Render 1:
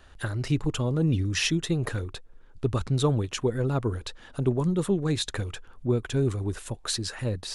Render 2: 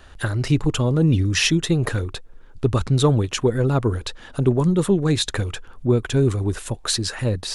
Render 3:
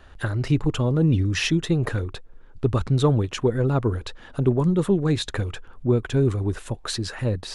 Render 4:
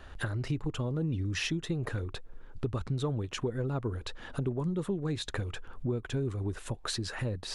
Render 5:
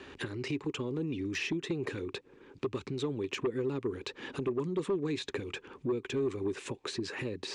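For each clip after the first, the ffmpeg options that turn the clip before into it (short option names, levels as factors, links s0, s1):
-af "acontrast=83"
-af "highshelf=f=4100:g=-9,volume=0.794"
-af "acompressor=threshold=0.0224:ratio=3"
-filter_complex "[0:a]acrossover=split=530|2000[s0][s1][s2];[s0]acompressor=threshold=0.0126:ratio=4[s3];[s1]acompressor=threshold=0.00501:ratio=4[s4];[s2]acompressor=threshold=0.00562:ratio=4[s5];[s3][s4][s5]amix=inputs=3:normalize=0,highpass=160,equalizer=f=280:t=q:w=4:g=6,equalizer=f=390:t=q:w=4:g=10,equalizer=f=670:t=q:w=4:g=-10,equalizer=f=1400:t=q:w=4:g=-6,equalizer=f=2400:t=q:w=4:g=7,lowpass=f=8100:w=0.5412,lowpass=f=8100:w=1.3066,aeval=exprs='0.0794*(cos(1*acos(clip(val(0)/0.0794,-1,1)))-cos(1*PI/2))+0.0178*(cos(5*acos(clip(val(0)/0.0794,-1,1)))-cos(5*PI/2))+0.00631*(cos(7*acos(clip(val(0)/0.0794,-1,1)))-cos(7*PI/2))':c=same"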